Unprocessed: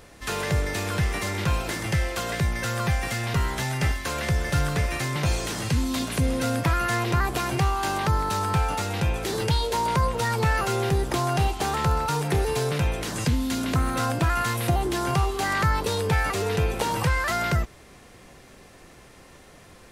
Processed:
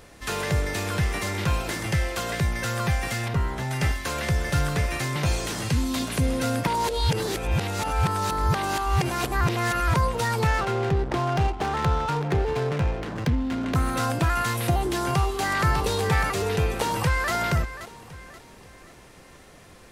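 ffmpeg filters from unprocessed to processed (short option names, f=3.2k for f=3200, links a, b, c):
-filter_complex "[0:a]asettb=1/sr,asplit=3[a][b][c];[a]atrim=end=3.284[d];[b]atrim=start=3.28:end=3.71,asetpts=PTS-STARTPTS,afade=t=in:d=0.004:c=qsin,afade=t=out:st=0.426:d=0.004:c=qsin,highshelf=f=2.1k:g=-11[e];[c]atrim=start=3.706[f];[d][e]acrossfade=d=0.004:c1=hsin:c2=qsin[g];[g][f]acrossfade=d=0.004:c1=qsin:c2=hsin,asettb=1/sr,asplit=3[h][i][j];[h]atrim=end=10.474[k];[i]atrim=start=10.47:end=13.75,asetpts=PTS-STARTPTS,afade=t=in:d=0.004:c=qsin,afade=t=out:st=3.276:d=0.004:c=qsin,adynamicsmooth=sensitivity=3.5:basefreq=640[l];[j]atrim=start=13.746[m];[k][l]acrossfade=d=0.004:c1=hsin:c2=qsin[n];[n][m]acrossfade=d=0.004:c1=qsin:c2=hsin,asplit=2[o][p];[p]afade=t=in:st=14.99:d=0.01,afade=t=out:st=15.64:d=0.01,aecho=0:1:600|1200|1800|2400:0.473151|0.141945|0.0425836|0.0127751[q];[o][q]amix=inputs=2:normalize=0,asplit=2[r][s];[s]afade=t=in:st=16.67:d=0.01,afade=t=out:st=17.32:d=0.01,aecho=0:1:530|1060|1590|2120:0.237137|0.0948549|0.037942|0.0151768[t];[r][t]amix=inputs=2:normalize=0,asplit=3[u][v][w];[u]atrim=end=6.672[x];[v]atrim=start=6.668:end=9.942,asetpts=PTS-STARTPTS,areverse[y];[w]atrim=start=9.938[z];[x][y]acrossfade=d=0.004:c1=hsin:c2=hsin[aa];[aa][z]acrossfade=d=0.004:c1=hsin:c2=hsin"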